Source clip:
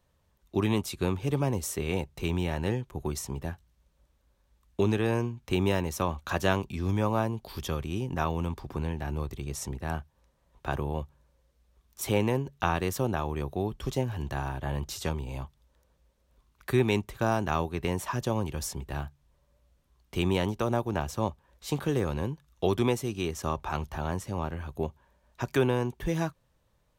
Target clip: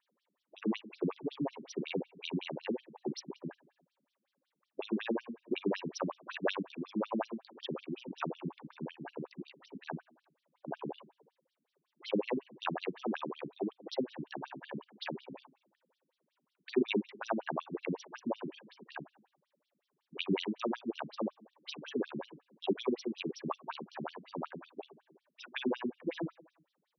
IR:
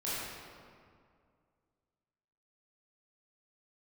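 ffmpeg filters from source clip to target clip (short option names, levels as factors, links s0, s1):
-filter_complex "[0:a]asplit=2[s0][s1];[1:a]atrim=start_sample=2205,afade=t=out:st=0.41:d=0.01,atrim=end_sample=18522,lowshelf=f=110:g=2.5[s2];[s1][s2]afir=irnorm=-1:irlink=0,volume=0.0631[s3];[s0][s3]amix=inputs=2:normalize=0,afftfilt=real='re*between(b*sr/1024,220*pow(4300/220,0.5+0.5*sin(2*PI*5.4*pts/sr))/1.41,220*pow(4300/220,0.5+0.5*sin(2*PI*5.4*pts/sr))*1.41)':imag='im*between(b*sr/1024,220*pow(4300/220,0.5+0.5*sin(2*PI*5.4*pts/sr))/1.41,220*pow(4300/220,0.5+0.5*sin(2*PI*5.4*pts/sr))*1.41)':win_size=1024:overlap=0.75,volume=1.12"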